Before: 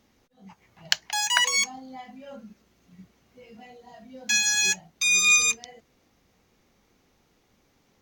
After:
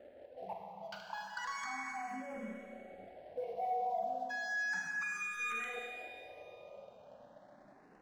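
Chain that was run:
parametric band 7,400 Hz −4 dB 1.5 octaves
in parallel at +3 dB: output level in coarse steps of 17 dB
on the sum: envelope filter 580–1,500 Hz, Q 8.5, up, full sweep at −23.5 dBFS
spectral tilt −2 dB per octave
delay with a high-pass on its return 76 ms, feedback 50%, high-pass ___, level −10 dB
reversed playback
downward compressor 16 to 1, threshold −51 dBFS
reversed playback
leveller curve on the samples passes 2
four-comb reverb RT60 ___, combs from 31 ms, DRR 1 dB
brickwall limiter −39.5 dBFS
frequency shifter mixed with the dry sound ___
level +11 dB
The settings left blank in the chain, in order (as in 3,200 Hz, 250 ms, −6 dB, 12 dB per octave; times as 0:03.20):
4,700 Hz, 2.5 s, +0.34 Hz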